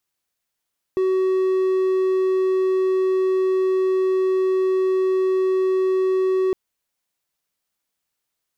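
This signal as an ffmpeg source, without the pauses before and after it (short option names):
-f lavfi -i "aevalsrc='0.188*(1-4*abs(mod(376*t+0.25,1)-0.5))':d=5.56:s=44100"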